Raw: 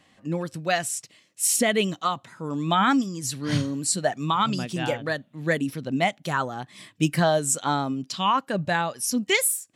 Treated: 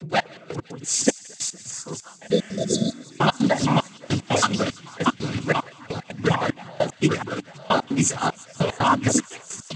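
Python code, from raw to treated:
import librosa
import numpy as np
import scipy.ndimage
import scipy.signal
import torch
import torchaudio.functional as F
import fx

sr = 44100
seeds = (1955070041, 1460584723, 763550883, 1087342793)

p1 = fx.block_reorder(x, sr, ms=276.0, group=3)
p2 = fx.echo_pitch(p1, sr, ms=91, semitones=-2, count=2, db_per_echo=-3.0)
p3 = np.where(np.abs(p2) >= 10.0 ** (-23.5 / 20.0), p2, 0.0)
p4 = p2 + (p3 * 10.0 ** (-6.0 / 20.0))
p5 = fx.noise_vocoder(p4, sr, seeds[0], bands=16)
p6 = fx.step_gate(p5, sr, bpm=150, pattern='xx...x.xx', floor_db=-24.0, edge_ms=4.5)
p7 = fx.spec_repair(p6, sr, seeds[1], start_s=2.34, length_s=0.66, low_hz=680.0, high_hz=3400.0, source='both')
y = p7 + fx.echo_wet_highpass(p7, sr, ms=169, feedback_pct=77, hz=2000.0, wet_db=-19.5, dry=0)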